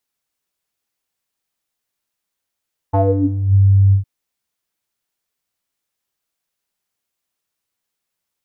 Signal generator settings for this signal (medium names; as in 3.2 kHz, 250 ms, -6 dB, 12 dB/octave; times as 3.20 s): synth note square G2 12 dB/octave, low-pass 110 Hz, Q 8.5, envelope 3 oct, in 0.59 s, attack 17 ms, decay 0.32 s, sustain -7 dB, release 0.11 s, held 1.00 s